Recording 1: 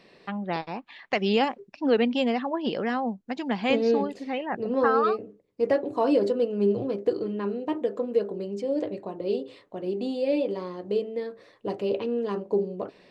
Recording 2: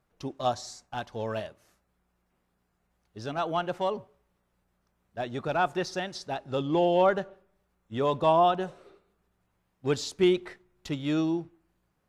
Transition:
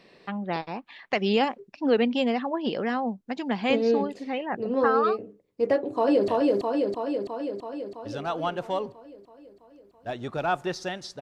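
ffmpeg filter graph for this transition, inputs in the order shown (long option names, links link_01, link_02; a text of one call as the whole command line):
ffmpeg -i cue0.wav -i cue1.wav -filter_complex "[0:a]apad=whole_dur=11.21,atrim=end=11.21,atrim=end=6.282[link_01];[1:a]atrim=start=1.388:end=6.32[link_02];[link_01][link_02]acrossfade=duration=0.004:curve1=hsin:curve2=hsin,asplit=2[link_03][link_04];[link_04]afade=type=in:start_time=5.74:duration=0.01,afade=type=out:start_time=6.28:duration=0.01,aecho=0:1:330|660|990|1320|1650|1980|2310|2640|2970|3300|3630|3960:0.891251|0.623876|0.436713|0.305699|0.213989|0.149793|0.104855|0.0733983|0.0513788|0.0359652|0.0251756|0.0176229[link_05];[link_03][link_05]amix=inputs=2:normalize=0" out.wav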